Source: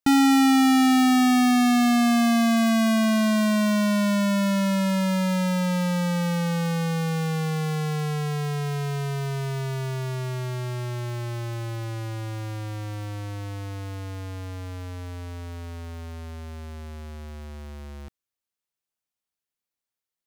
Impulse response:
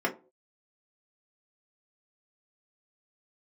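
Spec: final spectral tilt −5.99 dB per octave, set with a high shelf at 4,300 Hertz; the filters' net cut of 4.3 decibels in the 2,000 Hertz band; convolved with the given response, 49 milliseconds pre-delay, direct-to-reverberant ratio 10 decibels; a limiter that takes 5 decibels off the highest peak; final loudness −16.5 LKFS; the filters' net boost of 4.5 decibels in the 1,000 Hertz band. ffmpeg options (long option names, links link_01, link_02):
-filter_complex "[0:a]equalizer=frequency=1000:width_type=o:gain=8.5,equalizer=frequency=2000:width_type=o:gain=-7,highshelf=frequency=4300:gain=-7,alimiter=limit=-16.5dB:level=0:latency=1,asplit=2[link_01][link_02];[1:a]atrim=start_sample=2205,adelay=49[link_03];[link_02][link_03]afir=irnorm=-1:irlink=0,volume=-20.5dB[link_04];[link_01][link_04]amix=inputs=2:normalize=0,volume=7.5dB"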